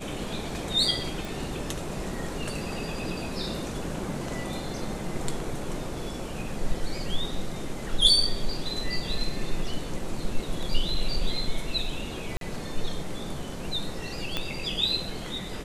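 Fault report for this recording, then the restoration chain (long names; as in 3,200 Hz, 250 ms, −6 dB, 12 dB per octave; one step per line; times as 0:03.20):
0:01.25: click
0:12.37–0:12.41: drop-out 42 ms
0:14.37: click −13 dBFS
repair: click removal
repair the gap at 0:12.37, 42 ms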